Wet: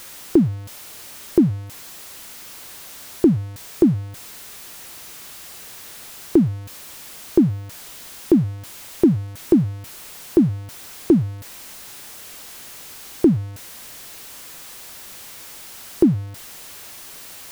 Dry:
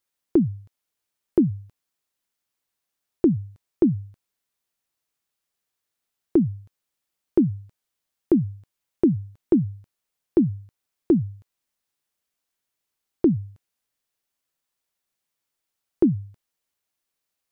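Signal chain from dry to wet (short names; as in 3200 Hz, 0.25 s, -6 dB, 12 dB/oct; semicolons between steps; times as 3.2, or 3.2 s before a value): zero-crossing step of -36 dBFS; gain +3.5 dB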